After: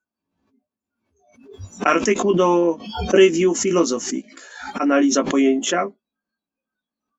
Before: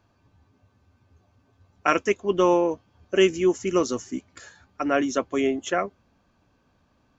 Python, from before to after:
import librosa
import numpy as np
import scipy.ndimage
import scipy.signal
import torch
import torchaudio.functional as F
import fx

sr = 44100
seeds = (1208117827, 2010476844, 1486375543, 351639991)

y = fx.noise_reduce_blind(x, sr, reduce_db=29)
y = fx.low_shelf_res(y, sr, hz=160.0, db=-8.5, q=3.0)
y = fx.doubler(y, sr, ms=18.0, db=-5)
y = fx.pre_swell(y, sr, db_per_s=71.0)
y = y * librosa.db_to_amplitude(2.0)